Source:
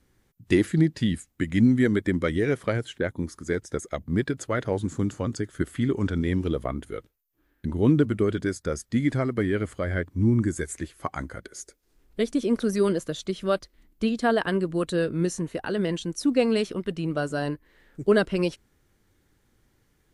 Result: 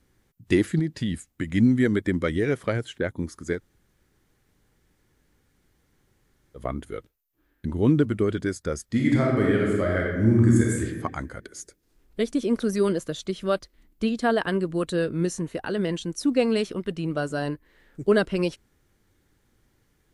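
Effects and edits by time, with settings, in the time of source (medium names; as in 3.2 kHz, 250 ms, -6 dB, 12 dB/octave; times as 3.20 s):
0.79–1.55 s: compression 2.5:1, threshold -23 dBFS
3.57–6.59 s: room tone, crossfade 0.10 s
8.85–10.84 s: reverb throw, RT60 1.2 s, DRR -2.5 dB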